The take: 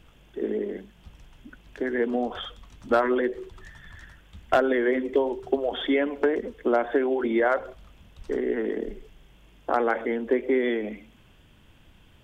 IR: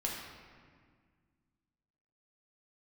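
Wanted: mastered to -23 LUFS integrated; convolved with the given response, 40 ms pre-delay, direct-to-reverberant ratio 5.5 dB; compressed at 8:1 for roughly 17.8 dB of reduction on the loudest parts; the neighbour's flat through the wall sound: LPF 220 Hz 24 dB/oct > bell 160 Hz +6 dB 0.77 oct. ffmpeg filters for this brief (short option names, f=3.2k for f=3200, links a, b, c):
-filter_complex "[0:a]acompressor=threshold=-36dB:ratio=8,asplit=2[a][b];[1:a]atrim=start_sample=2205,adelay=40[c];[b][c]afir=irnorm=-1:irlink=0,volume=-9dB[d];[a][d]amix=inputs=2:normalize=0,lowpass=f=220:w=0.5412,lowpass=f=220:w=1.3066,equalizer=f=160:t=o:w=0.77:g=6,volume=26.5dB"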